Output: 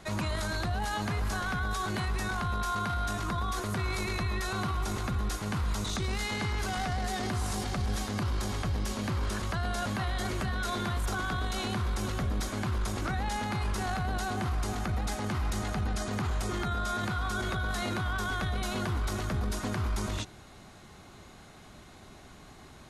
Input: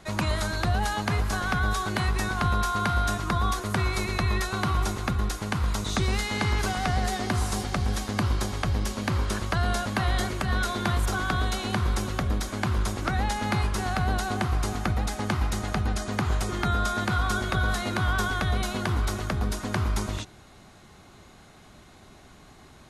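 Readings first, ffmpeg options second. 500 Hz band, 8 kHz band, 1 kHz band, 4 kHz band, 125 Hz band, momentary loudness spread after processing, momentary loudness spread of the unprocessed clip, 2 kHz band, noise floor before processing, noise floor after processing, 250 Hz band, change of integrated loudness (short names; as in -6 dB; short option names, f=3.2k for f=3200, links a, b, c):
-4.5 dB, -4.0 dB, -5.0 dB, -4.5 dB, -5.0 dB, 9 LU, 3 LU, -5.0 dB, -51 dBFS, -51 dBFS, -4.5 dB, -5.0 dB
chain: -af "alimiter=limit=-24dB:level=0:latency=1:release=11"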